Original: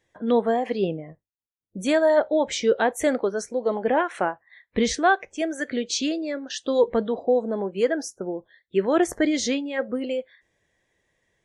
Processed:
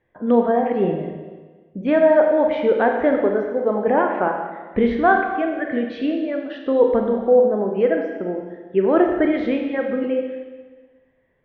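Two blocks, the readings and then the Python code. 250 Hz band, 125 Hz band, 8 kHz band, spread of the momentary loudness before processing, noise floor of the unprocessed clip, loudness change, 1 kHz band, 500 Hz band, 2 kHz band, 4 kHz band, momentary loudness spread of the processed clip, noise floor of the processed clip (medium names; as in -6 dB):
+5.0 dB, +5.5 dB, under -35 dB, 9 LU, under -85 dBFS, +4.5 dB, +5.0 dB, +5.5 dB, +2.5 dB, no reading, 12 LU, -58 dBFS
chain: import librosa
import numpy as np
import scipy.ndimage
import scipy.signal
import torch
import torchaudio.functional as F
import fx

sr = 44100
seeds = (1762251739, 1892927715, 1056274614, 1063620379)

y = scipy.signal.sosfilt(scipy.signal.bessel(6, 1700.0, 'lowpass', norm='mag', fs=sr, output='sos'), x)
y = fx.rev_schroeder(y, sr, rt60_s=1.4, comb_ms=30, drr_db=2.5)
y = y * librosa.db_to_amplitude(3.5)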